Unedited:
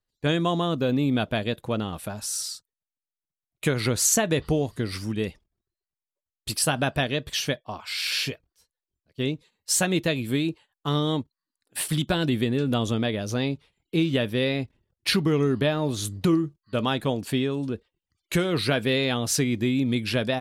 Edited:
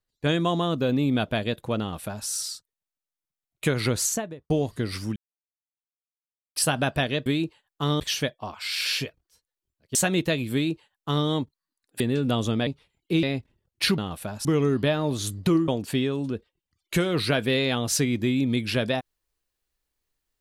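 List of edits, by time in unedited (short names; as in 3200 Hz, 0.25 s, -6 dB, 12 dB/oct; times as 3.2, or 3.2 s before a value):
1.8–2.27 copy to 15.23
3.9–4.5 studio fade out
5.16–6.56 mute
9.21–9.73 cut
10.31–11.05 copy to 7.26
11.78–12.43 cut
13.1–13.5 cut
14.06–14.48 cut
16.46–17.07 cut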